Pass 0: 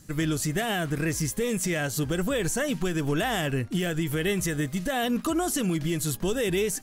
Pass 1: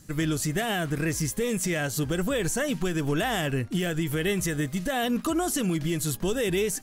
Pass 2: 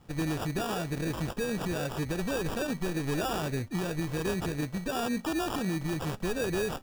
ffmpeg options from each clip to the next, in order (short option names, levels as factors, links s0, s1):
-af anull
-af "acrusher=samples=21:mix=1:aa=0.000001,volume=0.596"